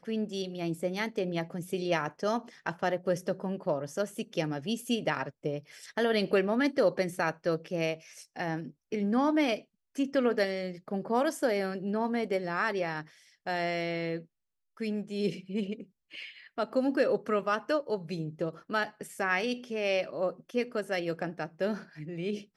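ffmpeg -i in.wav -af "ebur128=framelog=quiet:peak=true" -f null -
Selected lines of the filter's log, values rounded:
Integrated loudness:
  I:         -31.7 LUFS
  Threshold: -41.9 LUFS
Loudness range:
  LRA:         3.6 LU
  Threshold: -51.7 LUFS
  LRA low:   -33.6 LUFS
  LRA high:  -30.0 LUFS
True peak:
  Peak:      -14.0 dBFS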